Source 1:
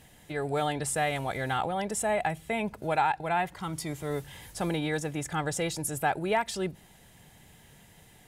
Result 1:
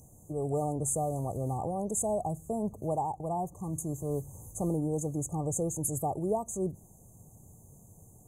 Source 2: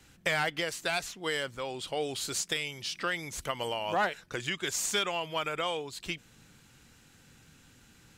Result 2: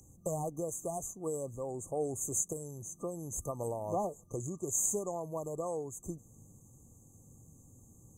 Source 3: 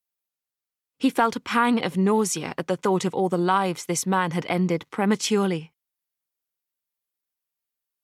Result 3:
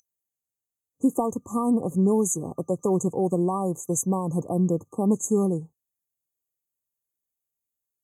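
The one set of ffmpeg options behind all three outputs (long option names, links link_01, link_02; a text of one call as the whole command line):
ffmpeg -i in.wav -af "aeval=exprs='val(0)+0.00501*sin(2*PI*6000*n/s)':channel_layout=same,afftfilt=real='re*(1-between(b*sr/4096,1200,6100))':imag='im*(1-between(b*sr/4096,1200,6100))':win_size=4096:overlap=0.75,equalizer=frequency=100:width_type=o:width=0.67:gain=7,equalizer=frequency=1000:width_type=o:width=0.67:gain=-11,equalizer=frequency=6300:width_type=o:width=0.67:gain=3" out.wav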